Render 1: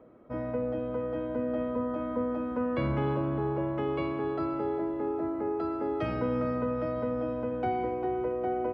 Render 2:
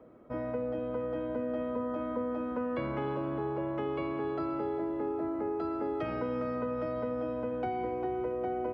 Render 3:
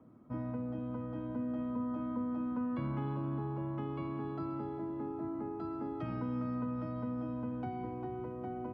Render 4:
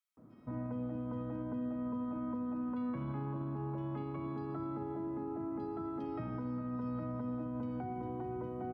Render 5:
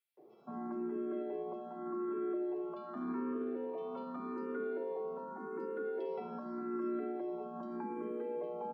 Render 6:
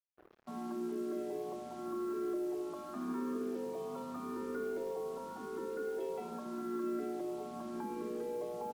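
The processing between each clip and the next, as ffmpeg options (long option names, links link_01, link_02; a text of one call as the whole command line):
ffmpeg -i in.wav -filter_complex "[0:a]acrossover=split=240|2800[link_01][link_02][link_03];[link_01]acompressor=threshold=-44dB:ratio=4[link_04];[link_02]acompressor=threshold=-31dB:ratio=4[link_05];[link_03]acompressor=threshold=-59dB:ratio=4[link_06];[link_04][link_05][link_06]amix=inputs=3:normalize=0" out.wav
ffmpeg -i in.wav -af "equalizer=frequency=125:width_type=o:width=1:gain=11,equalizer=frequency=250:width_type=o:width=1:gain=8,equalizer=frequency=500:width_type=o:width=1:gain=-9,equalizer=frequency=1000:width_type=o:width=1:gain=5,equalizer=frequency=2000:width_type=o:width=1:gain=-4,volume=-7.5dB" out.wav
ffmpeg -i in.wav -filter_complex "[0:a]alimiter=level_in=8.5dB:limit=-24dB:level=0:latency=1:release=45,volume=-8.5dB,acrossover=split=2800[link_01][link_02];[link_01]adelay=170[link_03];[link_03][link_02]amix=inputs=2:normalize=0,volume=1dB" out.wav
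ffmpeg -i in.wav -filter_complex "[0:a]afreqshift=110,asplit=2[link_01][link_02];[link_02]afreqshift=0.85[link_03];[link_01][link_03]amix=inputs=2:normalize=1,volume=2.5dB" out.wav
ffmpeg -i in.wav -filter_complex "[0:a]acrusher=bits=8:mix=0:aa=0.5,asplit=6[link_01][link_02][link_03][link_04][link_05][link_06];[link_02]adelay=349,afreqshift=-50,volume=-20.5dB[link_07];[link_03]adelay=698,afreqshift=-100,volume=-24.8dB[link_08];[link_04]adelay=1047,afreqshift=-150,volume=-29.1dB[link_09];[link_05]adelay=1396,afreqshift=-200,volume=-33.4dB[link_10];[link_06]adelay=1745,afreqshift=-250,volume=-37.7dB[link_11];[link_01][link_07][link_08][link_09][link_10][link_11]amix=inputs=6:normalize=0" out.wav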